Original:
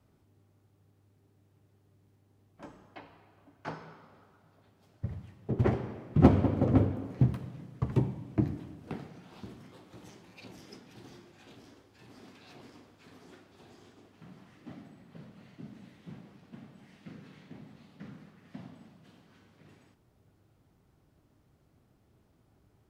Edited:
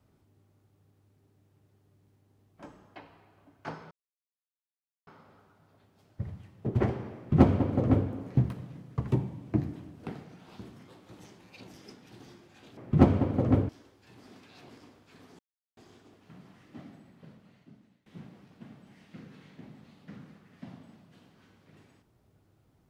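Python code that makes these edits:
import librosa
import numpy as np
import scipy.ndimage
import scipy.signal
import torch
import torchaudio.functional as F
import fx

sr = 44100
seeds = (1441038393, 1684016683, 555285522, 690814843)

y = fx.edit(x, sr, fx.insert_silence(at_s=3.91, length_s=1.16),
    fx.duplicate(start_s=6.0, length_s=0.92, to_s=11.61),
    fx.silence(start_s=13.31, length_s=0.38),
    fx.fade_out_to(start_s=14.87, length_s=1.11, floor_db=-22.5), tone=tone)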